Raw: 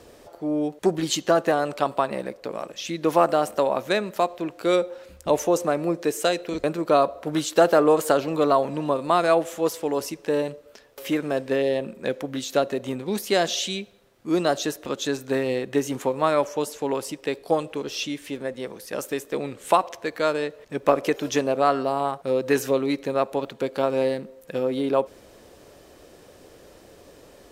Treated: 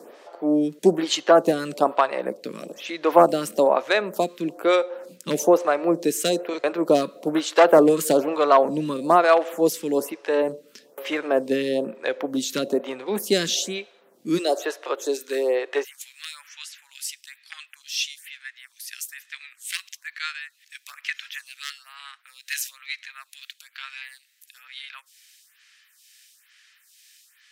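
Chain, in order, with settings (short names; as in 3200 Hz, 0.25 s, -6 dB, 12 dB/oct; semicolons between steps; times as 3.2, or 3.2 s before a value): one-sided fold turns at -12 dBFS; steep high-pass 160 Hz 36 dB/oct, from 14.37 s 350 Hz, from 15.83 s 1700 Hz; photocell phaser 1.1 Hz; gain +5.5 dB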